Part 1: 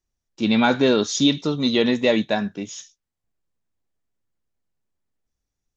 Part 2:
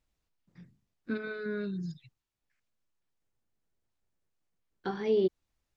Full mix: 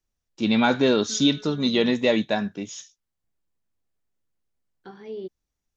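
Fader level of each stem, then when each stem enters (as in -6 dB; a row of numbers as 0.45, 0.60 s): -2.0, -8.5 dB; 0.00, 0.00 s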